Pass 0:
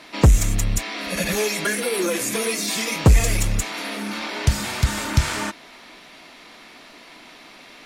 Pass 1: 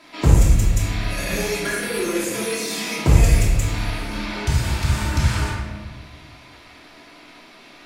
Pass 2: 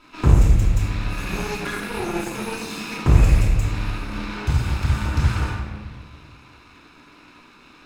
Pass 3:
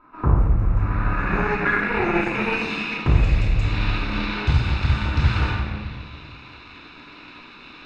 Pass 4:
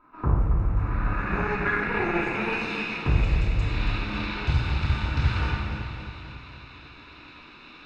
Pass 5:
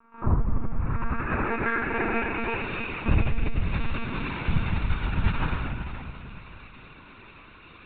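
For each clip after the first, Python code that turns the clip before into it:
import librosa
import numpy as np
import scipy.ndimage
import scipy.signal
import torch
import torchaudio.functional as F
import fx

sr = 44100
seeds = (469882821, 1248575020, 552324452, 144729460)

y1 = fx.room_shoebox(x, sr, seeds[0], volume_m3=800.0, walls='mixed', distance_m=2.9)
y1 = F.gain(torch.from_numpy(y1), -7.5).numpy()
y2 = fx.lower_of_two(y1, sr, delay_ms=0.76)
y2 = fx.high_shelf(y2, sr, hz=4400.0, db=-11.5)
y3 = fx.notch(y2, sr, hz=3200.0, q=9.0)
y3 = fx.rider(y3, sr, range_db=4, speed_s=0.5)
y3 = fx.filter_sweep_lowpass(y3, sr, from_hz=1200.0, to_hz=3500.0, start_s=0.65, end_s=3.3, q=2.2)
y4 = fx.echo_feedback(y3, sr, ms=276, feedback_pct=58, wet_db=-9.0)
y4 = F.gain(torch.from_numpy(y4), -5.0).numpy()
y5 = fx.air_absorb(y4, sr, metres=170.0)
y5 = fx.lpc_monotone(y5, sr, seeds[1], pitch_hz=230.0, order=16)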